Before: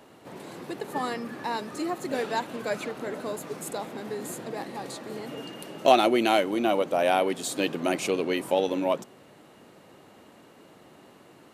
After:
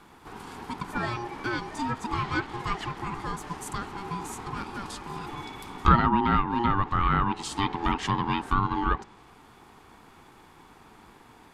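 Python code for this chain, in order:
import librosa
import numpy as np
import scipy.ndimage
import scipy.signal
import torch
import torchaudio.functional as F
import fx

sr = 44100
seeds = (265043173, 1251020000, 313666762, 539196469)

y = fx.env_lowpass_down(x, sr, base_hz=1500.0, full_db=-19.0)
y = y * np.sin(2.0 * np.pi * 590.0 * np.arange(len(y)) / sr)
y = y * 10.0 ** (3.0 / 20.0)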